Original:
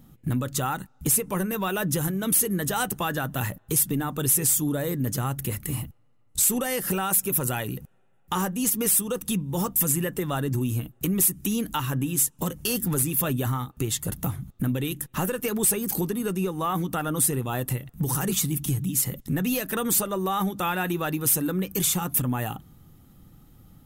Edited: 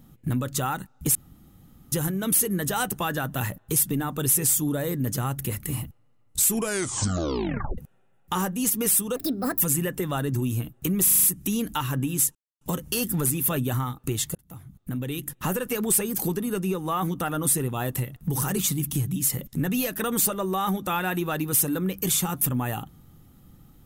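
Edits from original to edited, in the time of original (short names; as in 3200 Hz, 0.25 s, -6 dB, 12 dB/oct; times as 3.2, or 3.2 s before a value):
1.15–1.92 room tone
6.46 tape stop 1.32 s
9.16–9.79 speed 143%
11.22 stutter 0.04 s, 6 plays
12.34 insert silence 0.26 s
14.08–15.13 fade in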